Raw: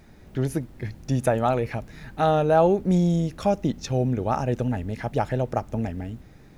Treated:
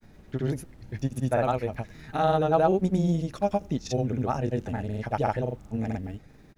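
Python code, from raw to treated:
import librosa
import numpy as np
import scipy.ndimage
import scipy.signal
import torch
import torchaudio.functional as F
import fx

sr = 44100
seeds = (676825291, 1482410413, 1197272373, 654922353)

y = fx.granulator(x, sr, seeds[0], grain_ms=100.0, per_s=20.0, spray_ms=100.0, spread_st=0)
y = F.gain(torch.from_numpy(y), -2.0).numpy()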